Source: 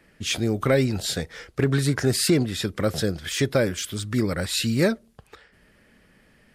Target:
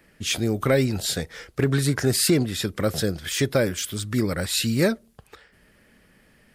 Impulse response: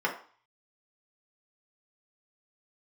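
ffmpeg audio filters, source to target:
-af "highshelf=frequency=11000:gain=8.5"

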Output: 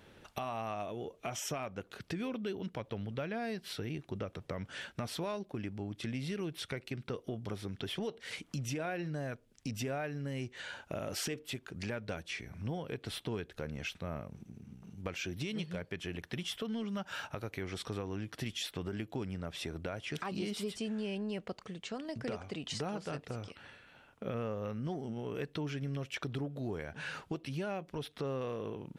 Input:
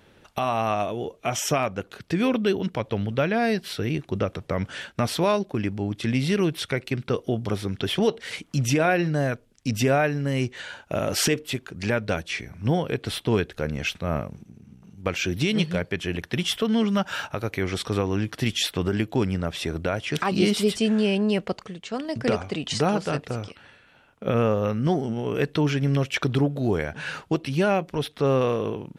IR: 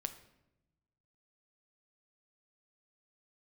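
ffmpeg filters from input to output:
-filter_complex "[0:a]asplit=2[link_01][link_02];[link_02]asoftclip=type=tanh:threshold=-22dB,volume=-11.5dB[link_03];[link_01][link_03]amix=inputs=2:normalize=0,acompressor=threshold=-36dB:ratio=2.5,volume=-5dB"

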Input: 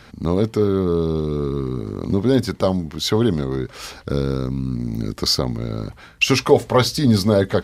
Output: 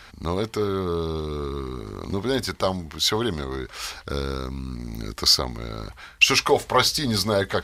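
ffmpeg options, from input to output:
ffmpeg -i in.wav -af "equalizer=frequency=125:width_type=o:width=1:gain=-12,equalizer=frequency=250:width_type=o:width=1:gain=-9,equalizer=frequency=500:width_type=o:width=1:gain=-6,volume=2dB" out.wav

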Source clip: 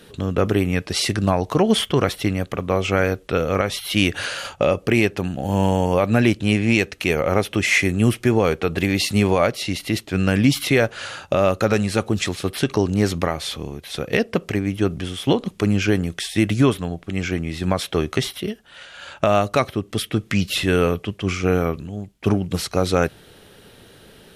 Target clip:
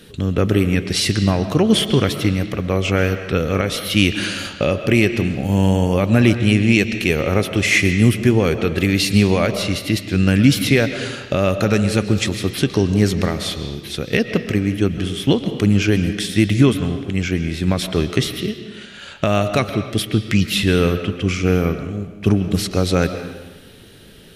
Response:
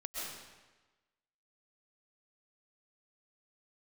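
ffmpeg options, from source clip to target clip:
-filter_complex "[0:a]equalizer=frequency=860:width=0.72:gain=-9,asplit=2[link_01][link_02];[1:a]atrim=start_sample=2205,lowpass=5200[link_03];[link_02][link_03]afir=irnorm=-1:irlink=0,volume=-7dB[link_04];[link_01][link_04]amix=inputs=2:normalize=0,volume=3dB"

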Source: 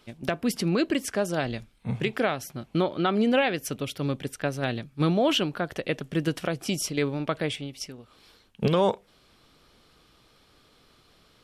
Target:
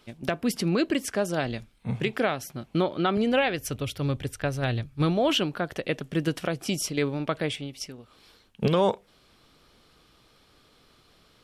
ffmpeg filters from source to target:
ffmpeg -i in.wav -filter_complex "[0:a]asettb=1/sr,asplit=3[link_01][link_02][link_03];[link_01]atrim=end=3.174[link_04];[link_02]atrim=start=3.17:end=5.3,asetpts=PTS-STARTPTS,afade=type=in:duration=0.004:curve=qsin,afade=type=out:start_time=2.126:duration=0.004:curve=qsin,lowshelf=frequency=130:width_type=q:width=1.5:gain=10[link_05];[link_03]atrim=start=5.296[link_06];[link_04][link_05]acrossfade=duration=0.004:curve1=hsin:curve2=qsin[link_07];[link_07][link_06]acrossfade=duration=0.004:curve1=qsin:curve2=hsin" out.wav

